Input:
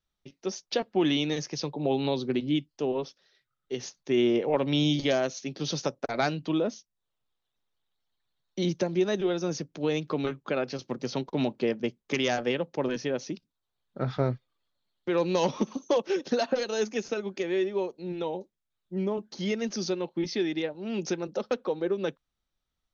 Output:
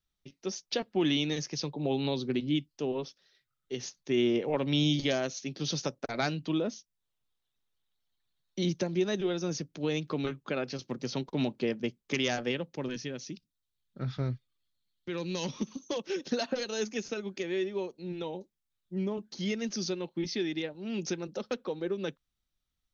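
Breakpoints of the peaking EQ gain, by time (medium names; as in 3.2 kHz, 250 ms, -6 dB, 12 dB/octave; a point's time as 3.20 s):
peaking EQ 710 Hz 2.4 oct
12.42 s -5.5 dB
13.15 s -15 dB
15.75 s -15 dB
16.26 s -7 dB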